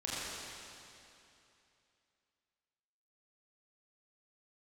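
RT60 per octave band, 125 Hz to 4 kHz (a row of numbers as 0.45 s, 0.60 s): 2.9 s, 2.8 s, 2.8 s, 2.8 s, 2.7 s, 2.6 s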